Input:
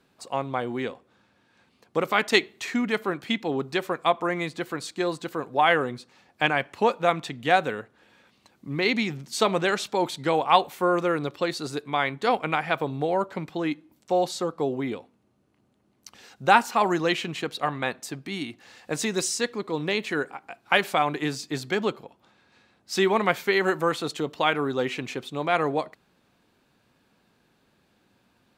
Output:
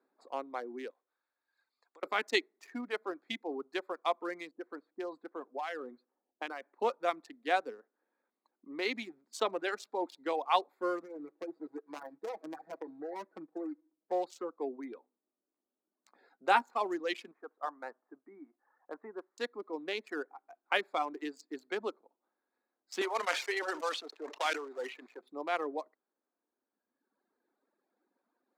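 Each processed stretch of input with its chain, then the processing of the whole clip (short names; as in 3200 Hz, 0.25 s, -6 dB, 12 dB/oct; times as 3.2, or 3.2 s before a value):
0.9–2.03 weighting filter ITU-R 468 + compressor 8:1, threshold -45 dBFS
4.51–6.8 low-pass opened by the level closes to 420 Hz, open at -21 dBFS + compressor 4:1, threshold -24 dBFS
11.02–14.12 median filter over 41 samples + comb 6.2 ms, depth 81% + compressor 10:1, threshold -24 dBFS
14.93–16.64 de-esser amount 20% + notch 5900 Hz, Q 6.2 + doubler 16 ms -9 dB
17.31–19.38 LPF 1300 Hz 24 dB/oct + tilt shelf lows -8.5 dB, about 860 Hz
23.01–25.21 block floating point 3-bit + BPF 440–6300 Hz + sustainer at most 62 dB/s
whole clip: Wiener smoothing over 15 samples; reverb removal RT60 1.7 s; steep high-pass 260 Hz 36 dB/oct; gain -9 dB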